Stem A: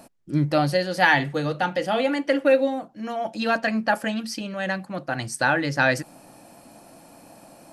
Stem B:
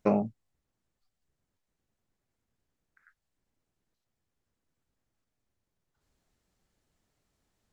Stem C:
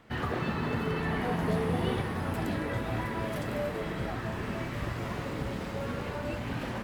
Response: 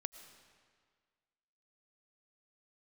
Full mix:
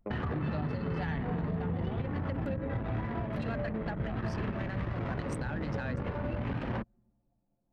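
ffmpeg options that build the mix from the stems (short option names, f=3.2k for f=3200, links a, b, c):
-filter_complex "[0:a]volume=-7dB[a];[1:a]volume=-13.5dB,asplit=2[b][c];[c]volume=-13dB[d];[2:a]volume=2.5dB,asplit=2[e][f];[f]volume=-5dB[g];[3:a]atrim=start_sample=2205[h];[d][g]amix=inputs=2:normalize=0[i];[i][h]afir=irnorm=-1:irlink=0[j];[a][b][e][j]amix=inputs=4:normalize=0,acrossover=split=200[k][l];[l]acompressor=threshold=-32dB:ratio=6[m];[k][m]amix=inputs=2:normalize=0,anlmdn=6.31,alimiter=level_in=0.5dB:limit=-24dB:level=0:latency=1:release=210,volume=-0.5dB"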